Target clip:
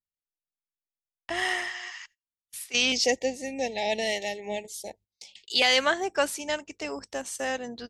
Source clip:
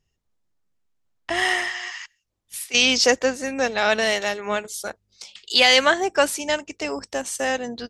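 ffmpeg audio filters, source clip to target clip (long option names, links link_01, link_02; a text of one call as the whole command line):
ffmpeg -i in.wav -filter_complex "[0:a]asettb=1/sr,asplit=3[link_01][link_02][link_03];[link_01]atrim=end=2.924[link_04];[link_02]atrim=start=2.92:end=5.62,asetpts=PTS-STARTPTS,afade=type=in:duration=0.004:curve=qsin,afade=type=out:start_time=2.696:duration=0.004:curve=qsin,asuperstop=centerf=1300:order=12:qfactor=1.4[link_05];[link_03]atrim=start=5.616[link_06];[link_04][link_05]acrossfade=duration=0.004:curve1=hsin:curve2=qsin[link_07];[link_07][link_06]acrossfade=duration=0.004:curve1=qsin:curve2=hsin,agate=range=-24dB:threshold=-47dB:ratio=16:detection=peak,volume=-6.5dB" out.wav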